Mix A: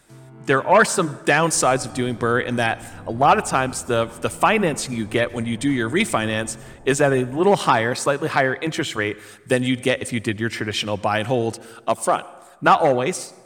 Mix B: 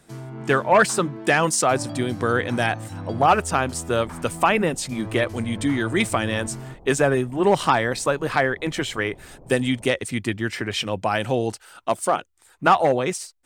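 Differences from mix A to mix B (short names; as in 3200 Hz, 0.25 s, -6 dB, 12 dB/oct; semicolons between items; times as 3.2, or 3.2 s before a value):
first sound +8.0 dB; second sound: entry +2.50 s; reverb: off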